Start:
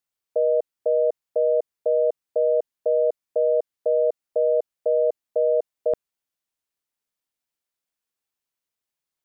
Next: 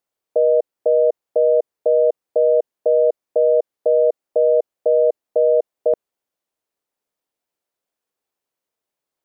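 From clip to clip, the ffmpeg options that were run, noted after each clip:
ffmpeg -i in.wav -af "equalizer=frequency=500:width=0.56:gain=11,alimiter=limit=-8.5dB:level=0:latency=1:release=34" out.wav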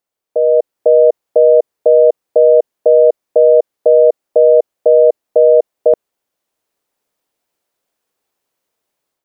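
ffmpeg -i in.wav -af "dynaudnorm=framelen=350:gausssize=3:maxgain=8.5dB,volume=1dB" out.wav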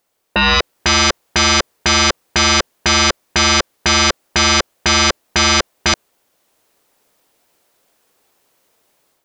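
ffmpeg -i in.wav -af "aeval=exprs='0.891*sin(PI/2*7.94*val(0)/0.891)':channel_layout=same,volume=-8.5dB" out.wav

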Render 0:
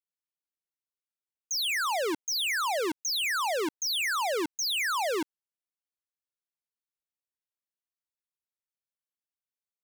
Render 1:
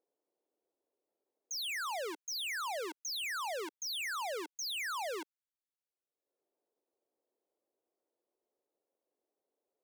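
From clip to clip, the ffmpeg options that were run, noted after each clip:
ffmpeg -i in.wav -filter_complex "[0:a]highpass=frequency=370:width=0.5412,highpass=frequency=370:width=1.3066,acrossover=split=570[link_01][link_02];[link_01]acompressor=mode=upward:threshold=-52dB:ratio=2.5[link_03];[link_03][link_02]amix=inputs=2:normalize=0,volume=-9dB" out.wav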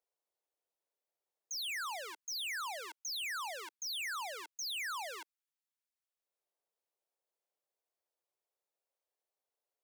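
ffmpeg -i in.wav -af "highpass=830,volume=-1dB" out.wav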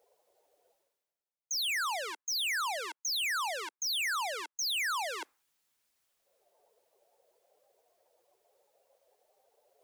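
ffmpeg -i in.wav -af "areverse,acompressor=mode=upward:threshold=-46dB:ratio=2.5,areverse,afftdn=noise_reduction=18:noise_floor=-63,volume=7dB" out.wav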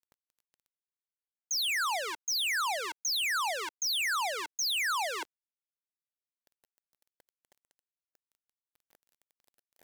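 ffmpeg -i in.wav -filter_complex "[0:a]asplit=2[link_01][link_02];[link_02]alimiter=level_in=13dB:limit=-24dB:level=0:latency=1:release=68,volume=-13dB,volume=2dB[link_03];[link_01][link_03]amix=inputs=2:normalize=0,acrusher=bits=8:mix=0:aa=0.000001,volume=-1dB" out.wav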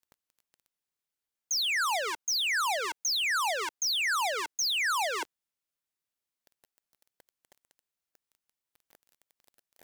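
ffmpeg -i in.wav -af "asoftclip=type=tanh:threshold=-30.5dB,volume=5.5dB" out.wav

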